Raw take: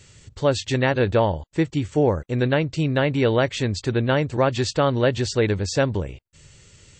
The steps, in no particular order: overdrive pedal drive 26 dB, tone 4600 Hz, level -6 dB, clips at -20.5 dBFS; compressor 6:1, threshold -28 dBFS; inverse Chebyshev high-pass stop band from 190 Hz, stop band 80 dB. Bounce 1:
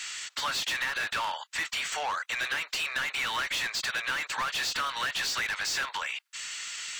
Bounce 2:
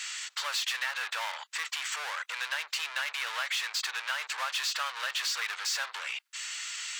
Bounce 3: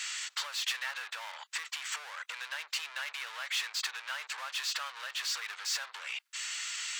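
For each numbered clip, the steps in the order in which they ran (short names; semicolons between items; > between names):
inverse Chebyshev high-pass > overdrive pedal > compressor; overdrive pedal > inverse Chebyshev high-pass > compressor; overdrive pedal > compressor > inverse Chebyshev high-pass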